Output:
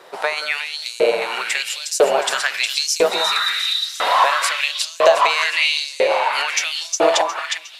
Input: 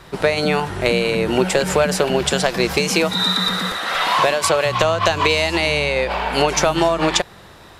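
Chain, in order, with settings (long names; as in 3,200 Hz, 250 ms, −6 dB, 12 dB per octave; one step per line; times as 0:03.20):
delay that swaps between a low-pass and a high-pass 180 ms, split 810 Hz, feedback 66%, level −2 dB
auto-filter high-pass saw up 1 Hz 440–7,000 Hz
level −2.5 dB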